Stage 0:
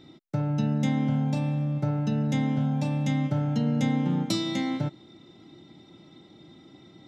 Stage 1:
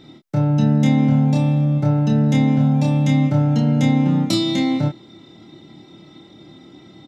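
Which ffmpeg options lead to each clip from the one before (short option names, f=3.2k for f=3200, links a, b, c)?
-filter_complex "[0:a]asplit=2[a][b];[b]adelay=27,volume=-4dB[c];[a][c]amix=inputs=2:normalize=0,volume=6dB"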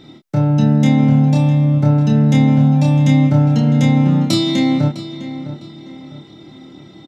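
-filter_complex "[0:a]asplit=2[a][b];[b]adelay=655,lowpass=f=3.9k:p=1,volume=-13dB,asplit=2[c][d];[d]adelay=655,lowpass=f=3.9k:p=1,volume=0.38,asplit=2[e][f];[f]adelay=655,lowpass=f=3.9k:p=1,volume=0.38,asplit=2[g][h];[h]adelay=655,lowpass=f=3.9k:p=1,volume=0.38[i];[a][c][e][g][i]amix=inputs=5:normalize=0,volume=3dB"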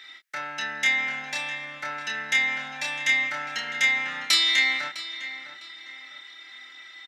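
-af "highpass=f=1.8k:t=q:w=4.2"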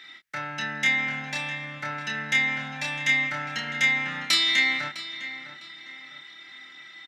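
-af "bass=f=250:g=15,treble=f=4k:g=-3"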